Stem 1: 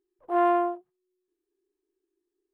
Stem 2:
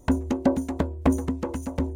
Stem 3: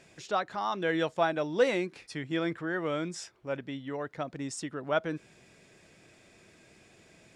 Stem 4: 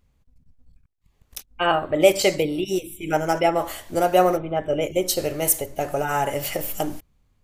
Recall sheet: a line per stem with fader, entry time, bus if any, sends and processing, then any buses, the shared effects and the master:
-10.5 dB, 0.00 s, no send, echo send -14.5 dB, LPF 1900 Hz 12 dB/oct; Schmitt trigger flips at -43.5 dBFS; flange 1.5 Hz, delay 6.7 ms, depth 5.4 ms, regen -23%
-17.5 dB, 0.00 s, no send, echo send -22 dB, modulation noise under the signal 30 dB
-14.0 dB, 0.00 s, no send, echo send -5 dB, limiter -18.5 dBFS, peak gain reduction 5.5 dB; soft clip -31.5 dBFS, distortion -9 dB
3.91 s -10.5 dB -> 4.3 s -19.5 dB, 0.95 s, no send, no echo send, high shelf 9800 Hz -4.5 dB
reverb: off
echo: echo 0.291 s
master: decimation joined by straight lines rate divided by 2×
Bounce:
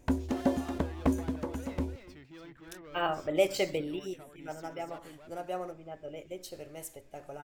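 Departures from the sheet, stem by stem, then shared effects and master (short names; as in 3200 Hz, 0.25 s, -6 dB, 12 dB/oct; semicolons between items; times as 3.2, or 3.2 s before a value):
stem 2 -17.5 dB -> -6.5 dB; stem 4: entry 0.95 s -> 1.35 s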